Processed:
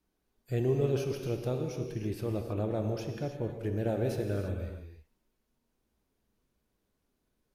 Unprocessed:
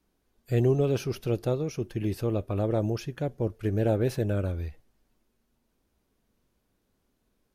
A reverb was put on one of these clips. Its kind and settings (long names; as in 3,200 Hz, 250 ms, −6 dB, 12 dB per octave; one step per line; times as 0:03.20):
reverb whose tail is shaped and stops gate 350 ms flat, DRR 3.5 dB
level −6 dB